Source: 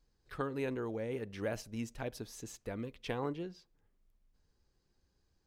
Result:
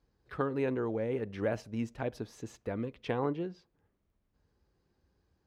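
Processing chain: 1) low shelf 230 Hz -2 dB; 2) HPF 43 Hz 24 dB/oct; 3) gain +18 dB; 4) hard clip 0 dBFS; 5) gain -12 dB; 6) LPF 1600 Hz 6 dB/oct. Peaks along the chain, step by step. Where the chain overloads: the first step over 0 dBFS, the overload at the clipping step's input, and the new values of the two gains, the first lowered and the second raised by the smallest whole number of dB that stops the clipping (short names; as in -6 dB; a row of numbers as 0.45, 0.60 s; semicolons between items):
-23.0, -21.5, -3.5, -3.5, -15.5, -17.5 dBFS; no overload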